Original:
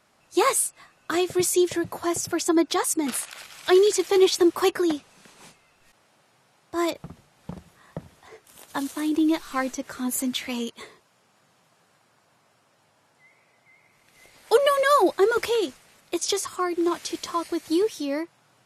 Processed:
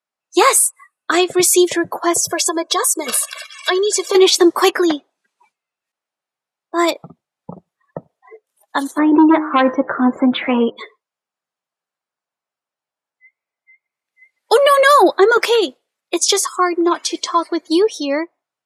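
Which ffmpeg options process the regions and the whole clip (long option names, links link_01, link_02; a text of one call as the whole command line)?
ffmpeg -i in.wav -filter_complex "[0:a]asettb=1/sr,asplit=3[link_01][link_02][link_03];[link_01]atrim=end=2.144[link_04];[link_02]atrim=start=2.14:end=4.15,asetpts=PTS-STARTPTS,afade=type=in:duration=0.004:curve=qsin,afade=type=out:start_time=2.006:duration=0.004:curve=qsin,aecho=1:1:1.8:0.87,atrim=end_sample=88641,adynamicequalizer=threshold=0.00891:dfrequency=2100:dqfactor=1.3:tfrequency=2100:tqfactor=1.3:attack=5:release=100:ratio=0.375:range=3:mode=cutabove:tftype=bell,acompressor=threshold=-24dB:ratio=4:attack=3.2:release=140:knee=1:detection=peak[link_05];[link_03]atrim=start=4.146[link_06];[link_04][link_05]acrossfade=duration=0.004:curve1=hsin:curve2=qsin[link_07];[link_07][link_06]acrossfade=duration=0.004:curve1=qsin:curve2=hsin,asettb=1/sr,asplit=3[link_08][link_09][link_10];[link_08]atrim=end=8.984[link_11];[link_09]atrim=start=8.98:end=10.77,asetpts=PTS-STARTPTS,afade=type=in:duration=0.004:curve=qsin,afade=type=out:start_time=1.786:duration=0.004:curve=qsin,lowpass=1400,bandreject=frequency=102.8:width_type=h:width=4,bandreject=frequency=205.6:width_type=h:width=4,bandreject=frequency=308.4:width_type=h:width=4,bandreject=frequency=411.2:width_type=h:width=4,bandreject=frequency=514:width_type=h:width=4,bandreject=frequency=616.8:width_type=h:width=4,bandreject=frequency=719.6:width_type=h:width=4,bandreject=frequency=822.4:width_type=h:width=4,bandreject=frequency=925.2:width_type=h:width=4,bandreject=frequency=1028:width_type=h:width=4,bandreject=frequency=1130.8:width_type=h:width=4,bandreject=frequency=1233.6:width_type=h:width=4,bandreject=frequency=1336.4:width_type=h:width=4,bandreject=frequency=1439.2:width_type=h:width=4,bandreject=frequency=1542:width_type=h:width=4,bandreject=frequency=1644.8:width_type=h:width=4,bandreject=frequency=1747.6:width_type=h:width=4,bandreject=frequency=1850.4:width_type=h:width=4,bandreject=frequency=1953.2:width_type=h:width=4,bandreject=frequency=2056:width_type=h:width=4,bandreject=frequency=2158.8:width_type=h:width=4,aeval=exprs='0.224*sin(PI/2*1.78*val(0)/0.224)':channel_layout=same[link_12];[link_10]atrim=start=10.766[link_13];[link_11][link_12]acrossfade=duration=0.004:curve1=hsin:curve2=qsin[link_14];[link_14][link_13]acrossfade=duration=0.004:curve1=qsin:curve2=hsin,highpass=frequency=500:poles=1,afftdn=noise_reduction=36:noise_floor=-41,alimiter=level_in=13.5dB:limit=-1dB:release=50:level=0:latency=1,volume=-1dB" out.wav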